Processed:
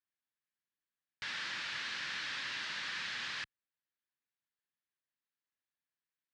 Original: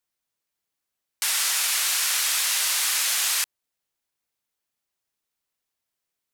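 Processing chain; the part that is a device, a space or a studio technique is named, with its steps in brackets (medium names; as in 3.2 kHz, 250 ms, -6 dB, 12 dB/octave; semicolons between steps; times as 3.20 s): guitar amplifier (valve stage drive 24 dB, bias 0.7; tone controls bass +3 dB, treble 0 dB; cabinet simulation 110–4300 Hz, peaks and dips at 430 Hz -6 dB, 710 Hz -7 dB, 1.7 kHz +8 dB); trim -7.5 dB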